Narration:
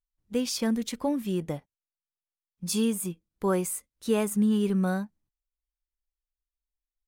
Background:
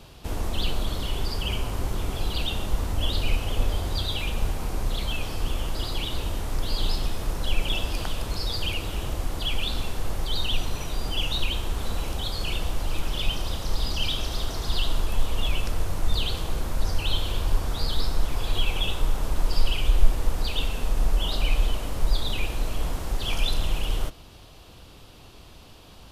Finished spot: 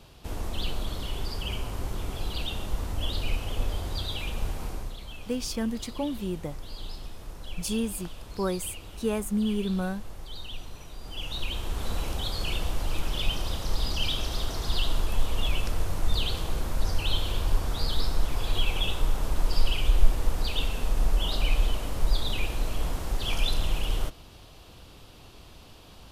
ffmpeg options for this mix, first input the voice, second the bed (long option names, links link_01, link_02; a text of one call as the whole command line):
ffmpeg -i stem1.wav -i stem2.wav -filter_complex "[0:a]adelay=4950,volume=-3dB[link_01];[1:a]volume=7dB,afade=type=out:start_time=4.66:duration=0.3:silence=0.375837,afade=type=in:start_time=11.01:duration=0.92:silence=0.266073[link_02];[link_01][link_02]amix=inputs=2:normalize=0" out.wav